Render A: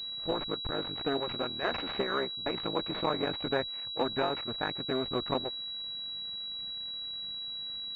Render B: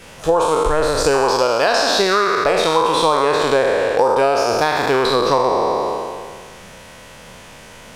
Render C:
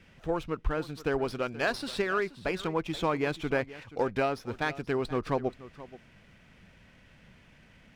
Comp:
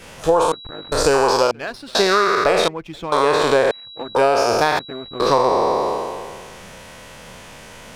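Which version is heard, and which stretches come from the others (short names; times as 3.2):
B
0.52–0.92 from A
1.51–1.95 from C
2.68–3.12 from C
3.71–4.15 from A
4.79–5.2 from A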